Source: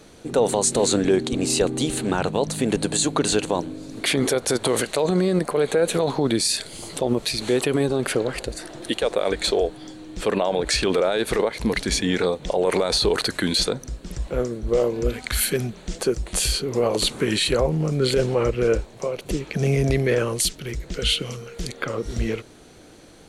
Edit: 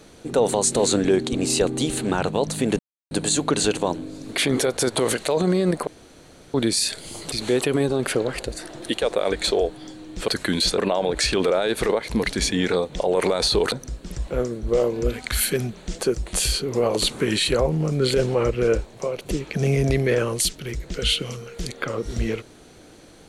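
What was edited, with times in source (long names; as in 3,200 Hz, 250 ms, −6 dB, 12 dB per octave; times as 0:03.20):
0:02.79: splice in silence 0.32 s
0:05.55–0:06.22: fill with room tone
0:07.00–0:07.32: remove
0:13.22–0:13.72: move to 0:10.28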